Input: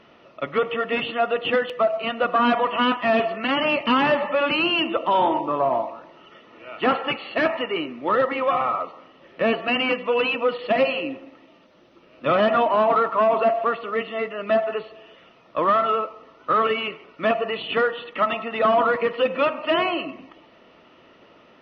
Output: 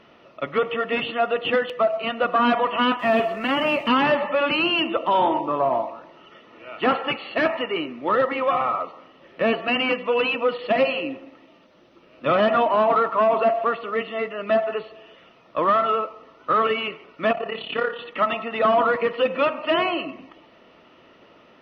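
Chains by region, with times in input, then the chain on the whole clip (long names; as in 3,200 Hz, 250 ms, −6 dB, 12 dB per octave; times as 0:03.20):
0:02.99–0:03.88: mu-law and A-law mismatch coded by mu + high-shelf EQ 4,500 Hz −6.5 dB
0:17.32–0:17.99: amplitude modulation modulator 34 Hz, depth 65% + flutter between parallel walls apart 8.5 metres, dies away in 0.28 s
whole clip: no processing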